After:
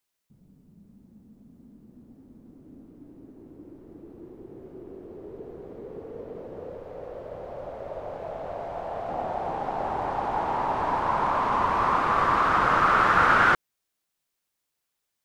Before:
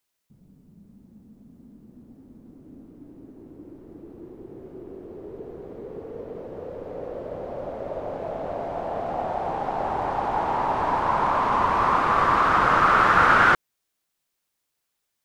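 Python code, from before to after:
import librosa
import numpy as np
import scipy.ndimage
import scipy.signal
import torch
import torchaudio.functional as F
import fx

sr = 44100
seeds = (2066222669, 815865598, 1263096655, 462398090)

y = fx.peak_eq(x, sr, hz=260.0, db=-7.0, octaves=1.3, at=(6.77, 9.09))
y = F.gain(torch.from_numpy(y), -2.5).numpy()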